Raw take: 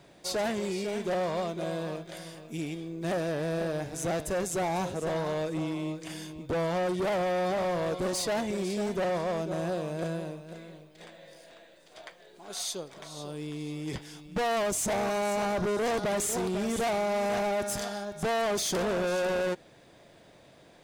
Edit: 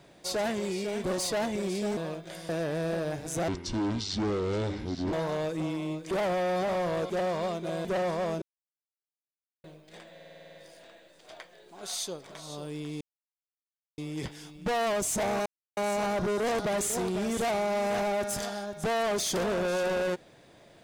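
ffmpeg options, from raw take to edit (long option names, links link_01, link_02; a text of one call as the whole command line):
ffmpeg -i in.wav -filter_complex "[0:a]asplit=21[link_01][link_02][link_03][link_04][link_05][link_06][link_07][link_08][link_09][link_10][link_11][link_12][link_13][link_14][link_15][link_16][link_17][link_18][link_19][link_20][link_21];[link_01]atrim=end=1.042[link_22];[link_02]atrim=start=7.988:end=8.922[link_23];[link_03]atrim=start=1.788:end=2.312[link_24];[link_04]atrim=start=3.168:end=4.164[link_25];[link_05]atrim=start=4.16:end=5.1,asetpts=PTS-STARTPTS,asetrate=25137,aresample=44100,atrim=end_sample=72726,asetpts=PTS-STARTPTS[link_26];[link_06]atrim=start=5.096:end=6.082[link_27];[link_07]atrim=start=6.998:end=7.992[link_28];[link_08]atrim=start=1.038:end=1.792[link_29];[link_09]atrim=start=8.918:end=9.49,asetpts=PTS-STARTPTS,afade=type=out:start_time=0.568:duration=0.004:curve=hsin[link_30];[link_10]atrim=start=9.49:end=10.71,asetpts=PTS-STARTPTS,volume=0[link_31];[link_11]atrim=start=10.71:end=11.262,asetpts=PTS-STARTPTS,afade=type=in:duration=0.004:curve=hsin[link_32];[link_12]atrim=start=11.208:end=11.262[link_33];[link_13]atrim=start=11.208:end=11.262[link_34];[link_14]atrim=start=11.208:end=11.262[link_35];[link_15]atrim=start=11.208:end=11.262[link_36];[link_16]atrim=start=11.208:end=11.262[link_37];[link_17]atrim=start=11.208:end=11.262[link_38];[link_18]atrim=start=11.208:end=11.262[link_39];[link_19]atrim=start=11.208:end=13.68,asetpts=PTS-STARTPTS,afade=type=out:start_time=2.468:duration=0.004:curve=hsin,apad=pad_dur=0.97[link_40];[link_20]atrim=start=13.68:end=15.16,asetpts=PTS-STARTPTS,afade=type=in:duration=0.004:curve=hsin,afade=type=out:start_time=1.476:duration=0.004:curve=hsin,apad=pad_dur=0.31[link_41];[link_21]atrim=start=15.16,asetpts=PTS-STARTPTS,afade=type=in:duration=0.004:curve=hsin[link_42];[link_22][link_23]acrossfade=duration=0.004:curve1=hsin:curve2=hsin[link_43];[link_43][link_24]acrossfade=duration=0.004:curve1=hsin:curve2=hsin[link_44];[link_44][link_25]acrossfade=duration=0.004:curve1=hsin:curve2=hsin[link_45];[link_45][link_26]acrossfade=duration=0.004:curve1=hsin:curve2=hsin[link_46];[link_46][link_27]acrossfade=duration=0.004:curve1=hsin:curve2=hsin[link_47];[link_47][link_28]acrossfade=duration=0.004:curve1=hsin:curve2=hsin[link_48];[link_48][link_29]acrossfade=duration=0.004:curve1=hsin:curve2=hsin[link_49];[link_30][link_31][link_32]concat=n=3:v=0:a=1[link_50];[link_49][link_50]acrossfade=duration=0.004:curve1=hsin:curve2=hsin[link_51];[link_51][link_33]acrossfade=duration=0.004:curve1=hsin:curve2=hsin[link_52];[link_52][link_34]acrossfade=duration=0.004:curve1=hsin:curve2=hsin[link_53];[link_53][link_35]acrossfade=duration=0.004:curve1=hsin:curve2=hsin[link_54];[link_54][link_36]acrossfade=duration=0.004:curve1=hsin:curve2=hsin[link_55];[link_55][link_37]acrossfade=duration=0.004:curve1=hsin:curve2=hsin[link_56];[link_56][link_38]acrossfade=duration=0.004:curve1=hsin:curve2=hsin[link_57];[link_57][link_39]acrossfade=duration=0.004:curve1=hsin:curve2=hsin[link_58];[link_40][link_41][link_42]concat=n=3:v=0:a=1[link_59];[link_58][link_59]acrossfade=duration=0.004:curve1=hsin:curve2=hsin" out.wav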